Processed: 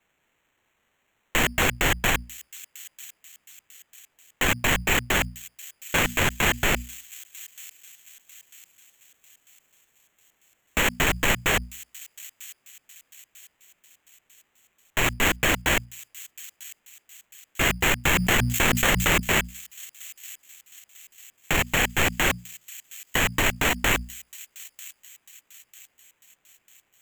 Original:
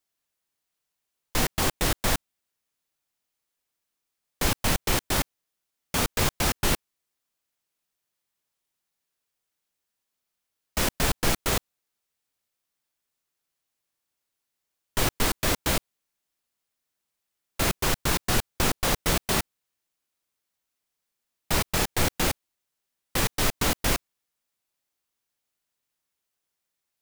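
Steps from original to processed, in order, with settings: high-order bell 2.2 kHz +9.5 dB 1.1 oct; hum notches 60/120/180/240 Hz; peak limiter -20 dBFS, peak gain reduction 12.5 dB; sample-and-hold 9×; feedback echo behind a high-pass 946 ms, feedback 45%, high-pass 5.3 kHz, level -10.5 dB; 18.05–19.20 s: level flattener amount 70%; trim +8.5 dB

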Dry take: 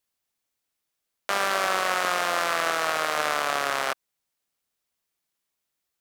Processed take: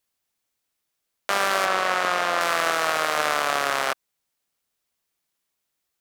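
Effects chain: 1.65–2.41 s: treble shelf 6.7 kHz -9.5 dB; trim +2.5 dB

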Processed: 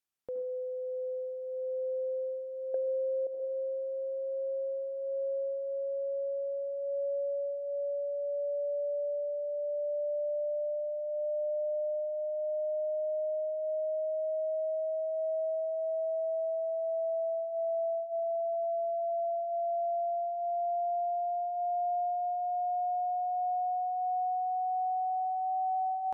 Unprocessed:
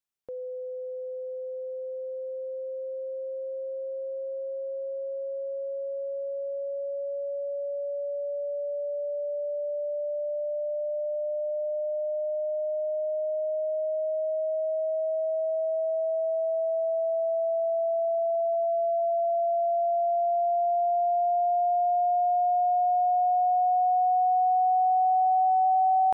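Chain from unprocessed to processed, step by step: 2.74–3.27 s: high-order bell 580 Hz +13.5 dB 1 oct; thinning echo 68 ms, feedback 76%, high-pass 550 Hz, level -15.5 dB; on a send at -7 dB: reverberation RT60 0.50 s, pre-delay 70 ms; on the sum: compression 6:1, threshold -31 dBFS, peak gain reduction 13 dB; Vorbis 192 kbps 44.1 kHz

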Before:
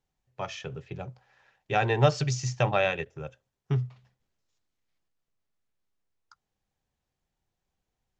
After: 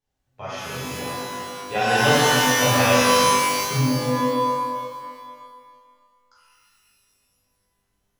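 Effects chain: 0.81–2.55 s: comb 4.1 ms, depth 55%; pitch-shifted reverb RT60 1.9 s, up +12 st, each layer -2 dB, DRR -10.5 dB; trim -6 dB

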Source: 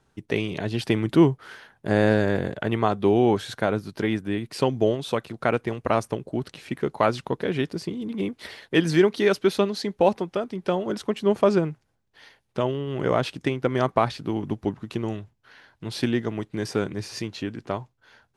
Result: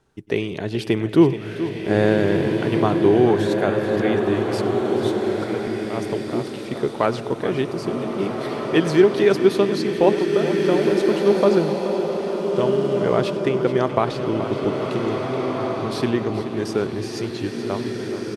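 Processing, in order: on a send: feedback delay 427 ms, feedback 52%, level -12.5 dB; 4.40–6.05 s: on the sum: slow attack 266 ms; peaking EQ 390 Hz +5 dB 0.57 oct; echo from a far wall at 17 m, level -19 dB; swelling reverb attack 1850 ms, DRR 2 dB

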